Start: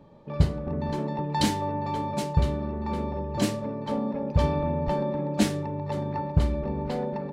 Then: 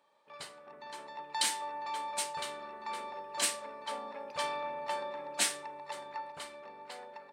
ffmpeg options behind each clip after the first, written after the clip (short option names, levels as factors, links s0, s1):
-af "highpass=1200,equalizer=f=8700:t=o:w=0.27:g=11.5,dynaudnorm=f=250:g=13:m=2.11,volume=0.596"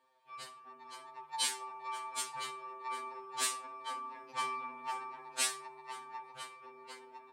-af "afftfilt=real='re*2.45*eq(mod(b,6),0)':imag='im*2.45*eq(mod(b,6),0)':win_size=2048:overlap=0.75"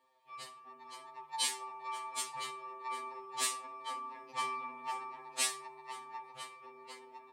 -af "asuperstop=centerf=1500:order=4:qfactor=6.5"